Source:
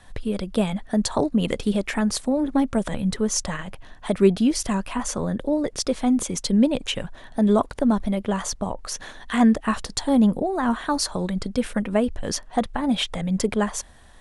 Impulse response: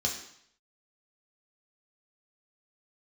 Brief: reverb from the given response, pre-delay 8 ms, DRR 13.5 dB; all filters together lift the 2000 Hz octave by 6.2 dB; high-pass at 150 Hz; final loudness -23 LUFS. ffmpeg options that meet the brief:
-filter_complex "[0:a]highpass=150,equalizer=f=2k:t=o:g=7.5,asplit=2[a][b];[1:a]atrim=start_sample=2205,adelay=8[c];[b][c]afir=irnorm=-1:irlink=0,volume=-19.5dB[d];[a][d]amix=inputs=2:normalize=0"

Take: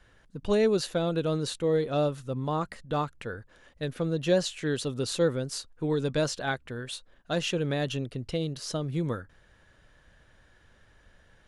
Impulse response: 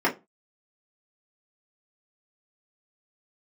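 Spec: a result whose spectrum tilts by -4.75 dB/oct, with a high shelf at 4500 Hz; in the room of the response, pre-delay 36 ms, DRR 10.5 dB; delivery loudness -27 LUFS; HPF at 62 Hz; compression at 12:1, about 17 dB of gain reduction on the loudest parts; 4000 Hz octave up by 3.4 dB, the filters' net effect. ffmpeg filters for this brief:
-filter_complex "[0:a]highpass=62,equalizer=f=4k:t=o:g=5.5,highshelf=f=4.5k:g=-3,acompressor=threshold=-37dB:ratio=12,asplit=2[a][b];[1:a]atrim=start_sample=2205,adelay=36[c];[b][c]afir=irnorm=-1:irlink=0,volume=-26dB[d];[a][d]amix=inputs=2:normalize=0,volume=14dB"

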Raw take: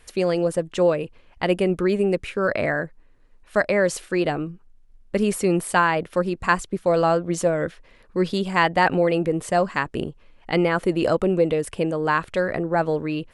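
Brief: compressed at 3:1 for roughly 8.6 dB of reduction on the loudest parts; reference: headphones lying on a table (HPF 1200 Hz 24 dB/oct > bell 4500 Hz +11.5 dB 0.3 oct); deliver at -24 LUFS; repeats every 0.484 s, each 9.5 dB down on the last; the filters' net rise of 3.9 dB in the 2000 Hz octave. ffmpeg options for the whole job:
-af "equalizer=f=2k:t=o:g=5,acompressor=threshold=-23dB:ratio=3,highpass=f=1.2k:w=0.5412,highpass=f=1.2k:w=1.3066,equalizer=f=4.5k:t=o:w=0.3:g=11.5,aecho=1:1:484|968|1452|1936:0.335|0.111|0.0365|0.012,volume=8dB"

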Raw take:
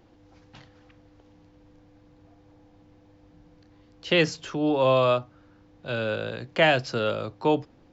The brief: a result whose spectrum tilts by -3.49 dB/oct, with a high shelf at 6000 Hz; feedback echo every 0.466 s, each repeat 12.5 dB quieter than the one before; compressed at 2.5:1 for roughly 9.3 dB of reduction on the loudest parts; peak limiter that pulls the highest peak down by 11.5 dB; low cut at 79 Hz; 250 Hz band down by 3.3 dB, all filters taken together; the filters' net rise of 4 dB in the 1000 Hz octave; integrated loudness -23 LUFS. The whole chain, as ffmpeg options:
-af "highpass=79,equalizer=f=250:t=o:g=-5,equalizer=f=1k:t=o:g=5.5,highshelf=f=6k:g=-5,acompressor=threshold=-28dB:ratio=2.5,alimiter=limit=-24dB:level=0:latency=1,aecho=1:1:466|932|1398:0.237|0.0569|0.0137,volume=11.5dB"

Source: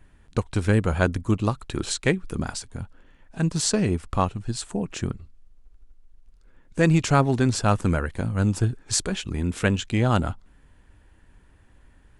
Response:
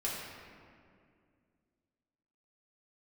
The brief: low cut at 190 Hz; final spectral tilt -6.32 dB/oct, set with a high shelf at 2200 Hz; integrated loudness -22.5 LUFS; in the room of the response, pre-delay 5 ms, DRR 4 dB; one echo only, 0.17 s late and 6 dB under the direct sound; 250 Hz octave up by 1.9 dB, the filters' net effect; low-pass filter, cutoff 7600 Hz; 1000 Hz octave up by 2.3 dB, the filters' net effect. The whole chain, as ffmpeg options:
-filter_complex "[0:a]highpass=190,lowpass=7.6k,equalizer=f=250:t=o:g=5,equalizer=f=1k:t=o:g=4.5,highshelf=f=2.2k:g=-7,aecho=1:1:170:0.501,asplit=2[a][b];[1:a]atrim=start_sample=2205,adelay=5[c];[b][c]afir=irnorm=-1:irlink=0,volume=-8.5dB[d];[a][d]amix=inputs=2:normalize=0,volume=-0.5dB"

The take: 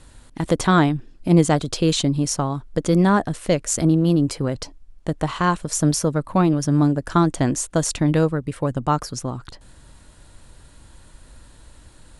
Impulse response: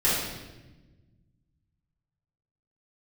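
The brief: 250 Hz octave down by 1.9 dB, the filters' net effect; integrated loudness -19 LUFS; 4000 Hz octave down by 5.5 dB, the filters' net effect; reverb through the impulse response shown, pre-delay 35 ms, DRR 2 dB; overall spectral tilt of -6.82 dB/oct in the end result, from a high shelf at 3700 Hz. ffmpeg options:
-filter_complex "[0:a]equalizer=f=250:t=o:g=-3,highshelf=f=3.7k:g=-4.5,equalizer=f=4k:t=o:g=-4,asplit=2[a][b];[1:a]atrim=start_sample=2205,adelay=35[c];[b][c]afir=irnorm=-1:irlink=0,volume=-16.5dB[d];[a][d]amix=inputs=2:normalize=0"

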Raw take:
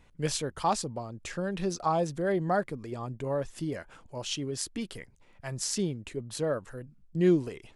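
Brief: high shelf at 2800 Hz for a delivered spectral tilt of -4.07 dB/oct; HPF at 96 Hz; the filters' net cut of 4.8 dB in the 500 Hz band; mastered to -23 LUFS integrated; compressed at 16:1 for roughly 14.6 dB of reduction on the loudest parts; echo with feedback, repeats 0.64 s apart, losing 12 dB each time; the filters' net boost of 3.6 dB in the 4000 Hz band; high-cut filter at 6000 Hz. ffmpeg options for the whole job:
-af "highpass=96,lowpass=6k,equalizer=f=500:t=o:g=-7,highshelf=f=2.8k:g=3.5,equalizer=f=4k:t=o:g=3,acompressor=threshold=-35dB:ratio=16,aecho=1:1:640|1280|1920:0.251|0.0628|0.0157,volume=17.5dB"

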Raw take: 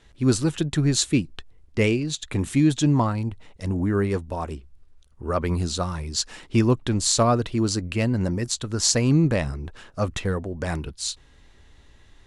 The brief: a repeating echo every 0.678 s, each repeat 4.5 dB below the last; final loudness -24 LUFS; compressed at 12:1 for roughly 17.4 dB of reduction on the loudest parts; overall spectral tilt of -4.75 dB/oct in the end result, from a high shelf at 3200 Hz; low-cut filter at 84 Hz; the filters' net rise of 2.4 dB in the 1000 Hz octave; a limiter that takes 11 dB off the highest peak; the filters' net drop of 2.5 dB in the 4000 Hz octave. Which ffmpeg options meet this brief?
-af "highpass=84,equalizer=f=1k:t=o:g=3,highshelf=f=3.2k:g=3,equalizer=f=4k:t=o:g=-5.5,acompressor=threshold=-32dB:ratio=12,alimiter=level_in=2.5dB:limit=-24dB:level=0:latency=1,volume=-2.5dB,aecho=1:1:678|1356|2034|2712|3390|4068|4746|5424|6102:0.596|0.357|0.214|0.129|0.0772|0.0463|0.0278|0.0167|0.01,volume=13dB"

